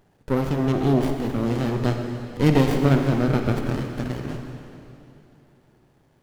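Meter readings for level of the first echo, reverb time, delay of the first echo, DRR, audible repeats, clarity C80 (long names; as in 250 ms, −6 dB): no echo audible, 3.0 s, no echo audible, 4.0 dB, no echo audible, 5.0 dB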